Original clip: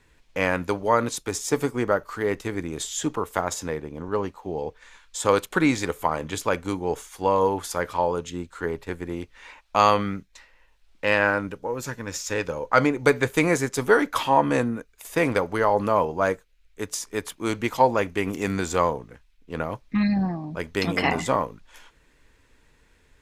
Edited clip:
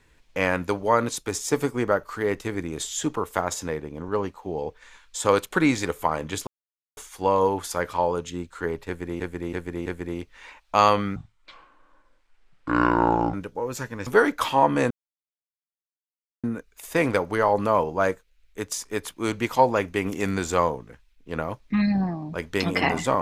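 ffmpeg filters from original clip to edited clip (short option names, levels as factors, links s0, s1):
-filter_complex "[0:a]asplit=10[s0][s1][s2][s3][s4][s5][s6][s7][s8][s9];[s0]atrim=end=6.47,asetpts=PTS-STARTPTS,afade=t=out:st=6.466:d=0.004:c=hsin[s10];[s1]atrim=start=6.47:end=6.97,asetpts=PTS-STARTPTS,volume=0[s11];[s2]atrim=start=6.97:end=9.202,asetpts=PTS-STARTPTS,afade=t=in:d=0.004:c=hsin[s12];[s3]atrim=start=8.868:end=9.202[s13];[s4]atrim=start=8.868:end=9.202[s14];[s5]atrim=start=8.868:end=10.174[s15];[s6]atrim=start=10.17:end=11.41,asetpts=PTS-STARTPTS,asetrate=25137,aresample=44100[s16];[s7]atrim=start=11.406:end=12.142[s17];[s8]atrim=start=13.808:end=14.65,asetpts=PTS-STARTPTS,afade=t=out:st=0.838:d=0.004:c=hsin,apad=pad_dur=1.53[s18];[s9]atrim=start=14.65,asetpts=PTS-STARTPTS,afade=t=in:d=0.004:c=hsin[s19];[s10][s11][s12]concat=n=3:v=0:a=1[s20];[s20][s13]acrossfade=d=0.004:c1=hsin:c2=hsin[s21];[s21][s14]acrossfade=d=0.004:c1=hsin:c2=hsin[s22];[s22][s15]acrossfade=d=0.004:c1=hsin:c2=hsin[s23];[s23][s16]acrossfade=d=0.004:c1=hsin:c2=hsin[s24];[s24][s17]acrossfade=d=0.004:c1=hsin:c2=hsin[s25];[s18][s19]concat=n=2:v=0:a=1[s26];[s25][s26]acrossfade=d=0.004:c1=hsin:c2=hsin"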